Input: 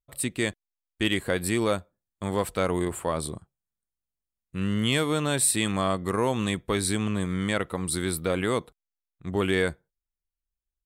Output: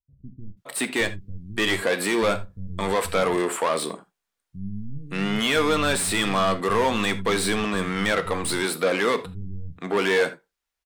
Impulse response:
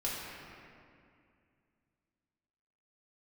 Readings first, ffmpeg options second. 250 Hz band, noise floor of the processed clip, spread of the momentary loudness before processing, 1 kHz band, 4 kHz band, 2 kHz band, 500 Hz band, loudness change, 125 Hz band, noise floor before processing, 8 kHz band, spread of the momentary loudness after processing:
+1.0 dB, −83 dBFS, 8 LU, +6.5 dB, +4.5 dB, +6.5 dB, +4.5 dB, +3.5 dB, −2.0 dB, below −85 dBFS, −0.5 dB, 15 LU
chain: -filter_complex "[0:a]asplit=2[link_01][link_02];[link_02]highpass=frequency=720:poles=1,volume=24dB,asoftclip=type=tanh:threshold=-10.5dB[link_03];[link_01][link_03]amix=inputs=2:normalize=0,lowpass=frequency=3700:poles=1,volume=-6dB,acrossover=split=160[link_04][link_05];[link_05]adelay=570[link_06];[link_04][link_06]amix=inputs=2:normalize=0,asplit=2[link_07][link_08];[1:a]atrim=start_sample=2205,atrim=end_sample=3969[link_09];[link_08][link_09]afir=irnorm=-1:irlink=0,volume=-8dB[link_10];[link_07][link_10]amix=inputs=2:normalize=0,volume=-5dB"

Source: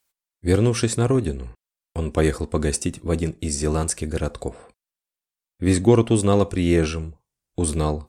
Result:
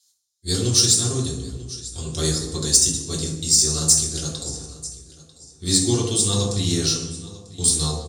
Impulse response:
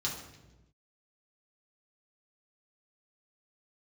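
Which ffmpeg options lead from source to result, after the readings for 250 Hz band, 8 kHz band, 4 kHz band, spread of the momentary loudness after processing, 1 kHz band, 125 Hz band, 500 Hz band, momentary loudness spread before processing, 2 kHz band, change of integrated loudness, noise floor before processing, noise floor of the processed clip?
−5.0 dB, +12.5 dB, +14.0 dB, 16 LU, −7.0 dB, −2.0 dB, −7.5 dB, 15 LU, −7.0 dB, +3.0 dB, below −85 dBFS, −62 dBFS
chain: -filter_complex "[0:a]lowpass=7300,highshelf=frequency=4800:gain=11.5,aecho=1:1:944|1888:0.106|0.0244[link_01];[1:a]atrim=start_sample=2205[link_02];[link_01][link_02]afir=irnorm=-1:irlink=0,aexciter=amount=6.4:drive=7.2:freq=3600,volume=-12dB"

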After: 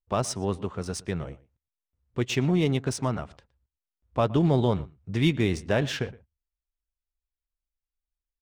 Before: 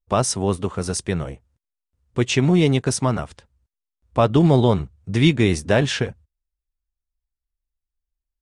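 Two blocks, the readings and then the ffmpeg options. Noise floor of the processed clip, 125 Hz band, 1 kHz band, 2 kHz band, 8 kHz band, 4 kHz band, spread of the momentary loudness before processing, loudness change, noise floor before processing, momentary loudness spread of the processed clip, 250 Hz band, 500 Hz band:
below −85 dBFS, −7.0 dB, −7.0 dB, −7.0 dB, −10.0 dB, −7.5 dB, 12 LU, −7.0 dB, below −85 dBFS, 12 LU, −7.0 dB, −7.0 dB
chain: -filter_complex "[0:a]asplit=2[link_01][link_02];[link_02]adelay=116.6,volume=-21dB,highshelf=frequency=4000:gain=-2.62[link_03];[link_01][link_03]amix=inputs=2:normalize=0,adynamicsmooth=sensitivity=3.5:basefreq=5300,volume=-7dB"

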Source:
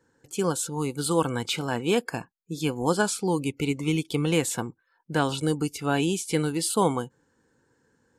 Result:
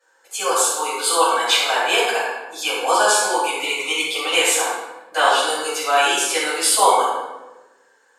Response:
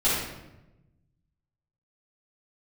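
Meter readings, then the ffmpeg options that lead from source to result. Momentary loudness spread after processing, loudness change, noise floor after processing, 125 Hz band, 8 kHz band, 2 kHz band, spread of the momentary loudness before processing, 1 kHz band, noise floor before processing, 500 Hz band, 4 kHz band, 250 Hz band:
10 LU, +8.5 dB, −58 dBFS, below −25 dB, +12.0 dB, +13.5 dB, 9 LU, +13.5 dB, −70 dBFS, +5.5 dB, +14.0 dB, −8.5 dB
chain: -filter_complex "[0:a]highpass=frequency=620:width=0.5412,highpass=frequency=620:width=1.3066[link_01];[1:a]atrim=start_sample=2205,asetrate=37485,aresample=44100[link_02];[link_01][link_02]afir=irnorm=-1:irlink=0,volume=-1dB"

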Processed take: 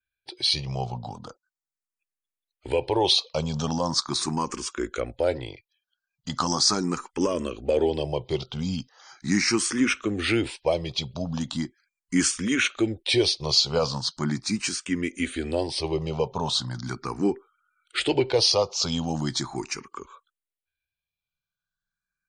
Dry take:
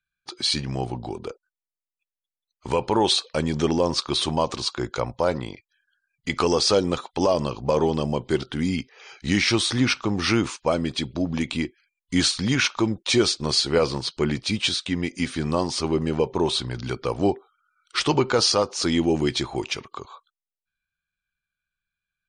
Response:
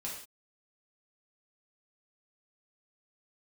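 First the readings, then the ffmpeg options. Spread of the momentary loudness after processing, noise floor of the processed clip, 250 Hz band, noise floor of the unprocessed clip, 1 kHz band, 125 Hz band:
13 LU, below −85 dBFS, −3.0 dB, below −85 dBFS, −3.5 dB, −3.0 dB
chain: -filter_complex "[0:a]adynamicequalizer=threshold=0.00891:dfrequency=7000:dqfactor=1.2:tfrequency=7000:tqfactor=1.2:attack=5:release=100:ratio=0.375:range=2.5:mode=boostabove:tftype=bell,asplit=2[link_01][link_02];[link_02]afreqshift=0.39[link_03];[link_01][link_03]amix=inputs=2:normalize=1"

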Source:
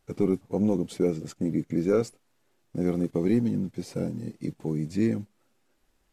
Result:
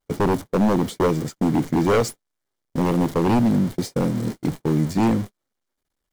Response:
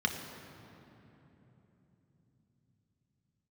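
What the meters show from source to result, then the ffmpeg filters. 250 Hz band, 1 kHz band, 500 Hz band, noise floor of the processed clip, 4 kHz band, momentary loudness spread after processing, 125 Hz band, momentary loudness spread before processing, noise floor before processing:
+6.0 dB, +18.5 dB, +5.5 dB, −80 dBFS, +12.5 dB, 7 LU, +7.5 dB, 10 LU, −70 dBFS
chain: -af "aeval=exprs='val(0)+0.5*0.015*sgn(val(0))':channel_layout=same,bandreject=frequency=2600:width=8.5,aeval=exprs='0.1*(abs(mod(val(0)/0.1+3,4)-2)-1)':channel_layout=same,agate=range=-46dB:threshold=-33dB:ratio=16:detection=peak,volume=8dB"

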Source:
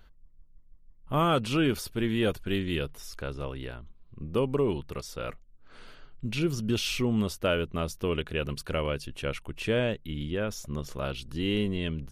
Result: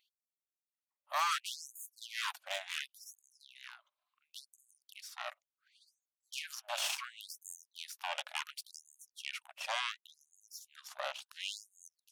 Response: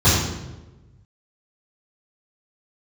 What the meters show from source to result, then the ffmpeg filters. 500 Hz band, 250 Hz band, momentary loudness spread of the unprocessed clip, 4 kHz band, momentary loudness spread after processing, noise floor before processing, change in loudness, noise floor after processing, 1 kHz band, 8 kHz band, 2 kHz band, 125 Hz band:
−21.0 dB, below −40 dB, 11 LU, −4.5 dB, 18 LU, −55 dBFS, −9.5 dB, below −85 dBFS, −5.0 dB, −1.5 dB, −5.5 dB, below −40 dB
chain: -af "aeval=exprs='0.178*(cos(1*acos(clip(val(0)/0.178,-1,1)))-cos(1*PI/2))+0.0562*(cos(6*acos(clip(val(0)/0.178,-1,1)))-cos(6*PI/2))':channel_layout=same,afftfilt=real='re*gte(b*sr/1024,520*pow(6500/520,0.5+0.5*sin(2*PI*0.7*pts/sr)))':imag='im*gte(b*sr/1024,520*pow(6500/520,0.5+0.5*sin(2*PI*0.7*pts/sr)))':win_size=1024:overlap=0.75,volume=-6.5dB"

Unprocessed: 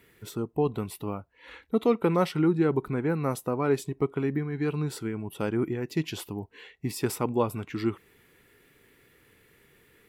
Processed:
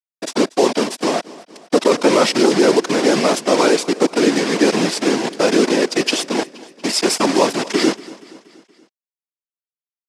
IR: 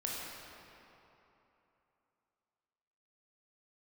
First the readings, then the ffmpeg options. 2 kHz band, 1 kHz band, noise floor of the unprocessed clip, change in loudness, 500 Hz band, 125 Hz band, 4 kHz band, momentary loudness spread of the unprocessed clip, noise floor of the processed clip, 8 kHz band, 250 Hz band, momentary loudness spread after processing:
+17.0 dB, +13.5 dB, −62 dBFS, +12.5 dB, +13.0 dB, −1.5 dB, +22.5 dB, 13 LU, below −85 dBFS, +19.5 dB, +11.0 dB, 7 LU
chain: -filter_complex "[0:a]acrusher=bits=5:mix=0:aa=0.000001,apsyclip=24.5dB,afftfilt=real='hypot(re,im)*cos(2*PI*random(0))':imag='hypot(re,im)*sin(2*PI*random(1))':win_size=512:overlap=0.75,highpass=frequency=240:width=0.5412,highpass=frequency=240:width=1.3066,equalizer=frequency=660:width_type=q:width=4:gain=4,equalizer=frequency=1300:width_type=q:width=4:gain=-4,equalizer=frequency=5100:width_type=q:width=4:gain=6,lowpass=frequency=8900:width=0.5412,lowpass=frequency=8900:width=1.3066,asplit=2[link_01][link_02];[link_02]aecho=0:1:237|474|711|948:0.1|0.055|0.0303|0.0166[link_03];[link_01][link_03]amix=inputs=2:normalize=0,volume=-1.5dB"

